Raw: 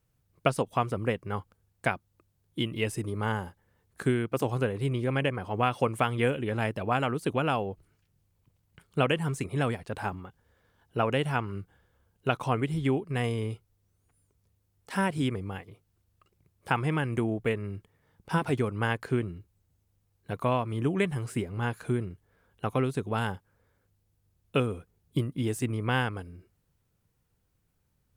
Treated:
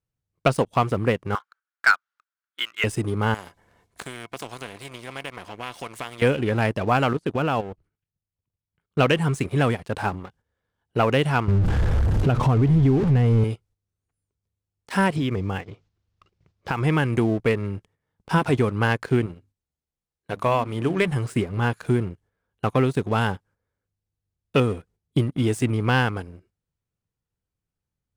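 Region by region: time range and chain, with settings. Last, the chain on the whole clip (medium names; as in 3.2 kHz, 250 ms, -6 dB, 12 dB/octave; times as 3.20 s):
1.35–2.84 s: resonant high-pass 1.4 kHz, resonance Q 5.8 + distance through air 120 m
3.34–6.22 s: compression 1.5:1, threshold -57 dBFS + small resonant body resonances 700/1000/2200 Hz, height 12 dB, ringing for 75 ms + spectrum-flattening compressor 2:1
7.13–8.99 s: treble shelf 5.1 kHz -11.5 dB + level held to a coarse grid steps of 10 dB
11.48–13.44 s: jump at every zero crossing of -31.5 dBFS + tilt EQ -3.5 dB/octave + compression 3:1, threshold -23 dBFS
15.16–16.83 s: companding laws mixed up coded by mu + low-pass 6 kHz 24 dB/octave + compression 5:1, threshold -28 dBFS
19.26–21.08 s: bass shelf 270 Hz -5.5 dB + hum notches 50/100/150/200/250/300 Hz
whole clip: gate -58 dBFS, range -8 dB; low-pass 9.4 kHz 12 dB/octave; waveshaping leveller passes 2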